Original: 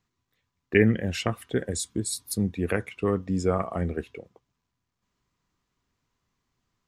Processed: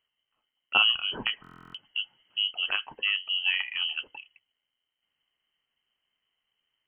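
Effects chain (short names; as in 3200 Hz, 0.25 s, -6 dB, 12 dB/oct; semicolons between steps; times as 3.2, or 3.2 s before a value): inverted band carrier 3100 Hz; stuck buffer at 1.42, samples 1024, times 13; gain -3 dB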